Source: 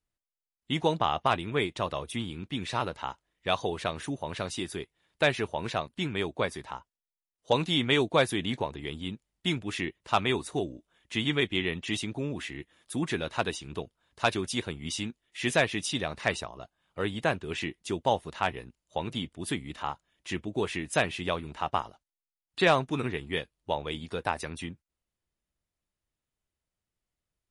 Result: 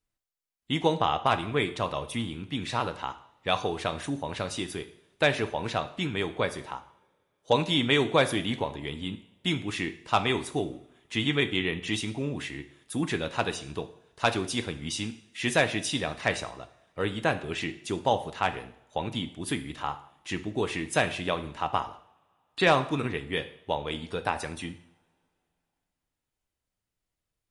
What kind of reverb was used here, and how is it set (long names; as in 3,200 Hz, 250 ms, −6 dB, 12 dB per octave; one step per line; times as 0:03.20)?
coupled-rooms reverb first 0.64 s, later 2.9 s, from −27 dB, DRR 9 dB
level +1 dB